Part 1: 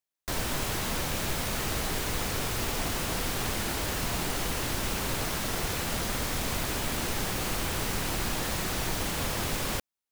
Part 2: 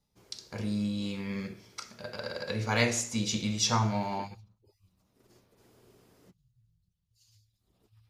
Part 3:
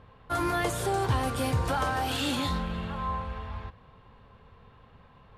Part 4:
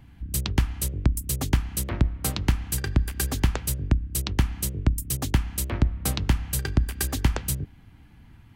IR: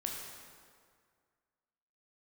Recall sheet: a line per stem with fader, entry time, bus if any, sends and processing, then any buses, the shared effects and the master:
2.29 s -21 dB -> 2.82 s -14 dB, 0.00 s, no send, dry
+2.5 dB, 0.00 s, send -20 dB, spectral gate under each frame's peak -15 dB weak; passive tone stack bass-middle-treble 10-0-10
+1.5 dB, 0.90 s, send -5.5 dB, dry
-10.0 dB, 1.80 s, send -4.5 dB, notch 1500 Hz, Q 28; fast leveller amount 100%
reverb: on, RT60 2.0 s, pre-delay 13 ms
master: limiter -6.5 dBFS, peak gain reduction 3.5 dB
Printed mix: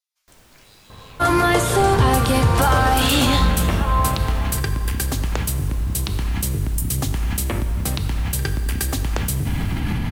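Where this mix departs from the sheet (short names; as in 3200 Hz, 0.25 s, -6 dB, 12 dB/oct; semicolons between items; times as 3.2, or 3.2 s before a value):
stem 2 +2.5 dB -> -3.5 dB; stem 3 +1.5 dB -> +8.5 dB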